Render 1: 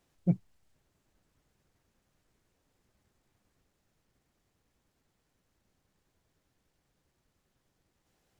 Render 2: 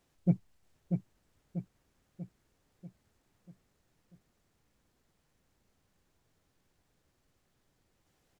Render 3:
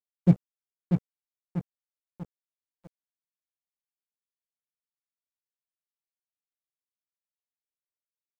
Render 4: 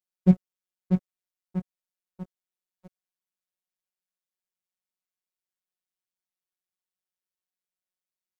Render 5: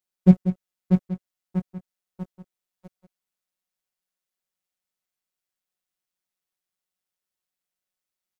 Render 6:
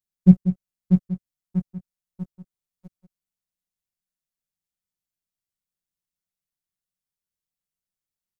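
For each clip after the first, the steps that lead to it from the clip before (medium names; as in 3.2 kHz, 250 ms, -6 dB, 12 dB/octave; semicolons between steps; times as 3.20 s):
feedback delay 640 ms, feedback 51%, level -5.5 dB
crossover distortion -44.5 dBFS; trim +8.5 dB
robot voice 184 Hz; trim +2 dB
delay 189 ms -11 dB; trim +4 dB
tone controls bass +14 dB, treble +5 dB; trim -8.5 dB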